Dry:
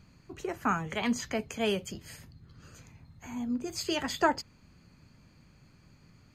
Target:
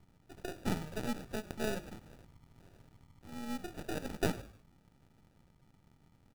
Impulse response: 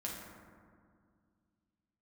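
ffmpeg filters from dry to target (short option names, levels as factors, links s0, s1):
-filter_complex "[0:a]aeval=exprs='if(lt(val(0),0),0.251*val(0),val(0))':c=same,bandreject=f=5100:w=5.4,asplit=2[s0][s1];[1:a]atrim=start_sample=2205,atrim=end_sample=6174[s2];[s1][s2]afir=irnorm=-1:irlink=0,volume=0.126[s3];[s0][s3]amix=inputs=2:normalize=0,acrusher=samples=41:mix=1:aa=0.000001,asplit=4[s4][s5][s6][s7];[s5]adelay=101,afreqshift=-53,volume=0.133[s8];[s6]adelay=202,afreqshift=-106,volume=0.0519[s9];[s7]adelay=303,afreqshift=-159,volume=0.0202[s10];[s4][s8][s9][s10]amix=inputs=4:normalize=0,volume=0.596"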